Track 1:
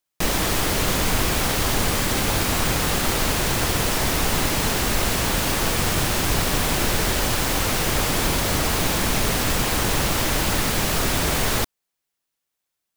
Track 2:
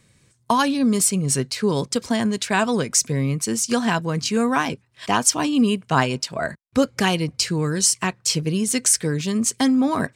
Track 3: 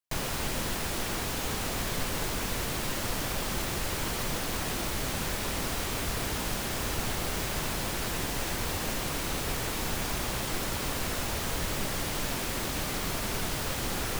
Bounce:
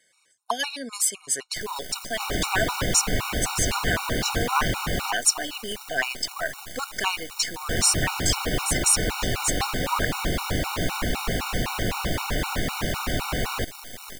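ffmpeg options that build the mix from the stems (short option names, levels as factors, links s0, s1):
-filter_complex "[0:a]acrossover=split=4300[s0][s1];[s1]acompressor=threshold=0.0224:ratio=4:attack=1:release=60[s2];[s0][s2]amix=inputs=2:normalize=0,adelay=2000,volume=0.841,asplit=3[s3][s4][s5];[s3]atrim=end=5.11,asetpts=PTS-STARTPTS,afade=t=out:st=5.106:d=0.004:c=hsin[s6];[s4]atrim=start=5.11:end=7.69,asetpts=PTS-STARTPTS,volume=0[s7];[s5]atrim=start=7.69,asetpts=PTS-STARTPTS,afade=t=in:d=0.004:c=hsin[s8];[s6][s7][s8]concat=n=3:v=0:a=1[s9];[1:a]highpass=760,volume=1.12[s10];[2:a]lowshelf=f=340:g=-6,aeval=exprs='0.224*(cos(1*acos(clip(val(0)/0.224,-1,1)))-cos(1*PI/2))+0.112*(cos(8*acos(clip(val(0)/0.224,-1,1)))-cos(8*PI/2))':c=same,aeval=exprs='abs(val(0))':c=same,adelay=1450,volume=0.335[s11];[s9][s10][s11]amix=inputs=3:normalize=0,afftfilt=real='re*gt(sin(2*PI*3.9*pts/sr)*(1-2*mod(floor(b*sr/1024/740),2)),0)':imag='im*gt(sin(2*PI*3.9*pts/sr)*(1-2*mod(floor(b*sr/1024/740),2)),0)':win_size=1024:overlap=0.75"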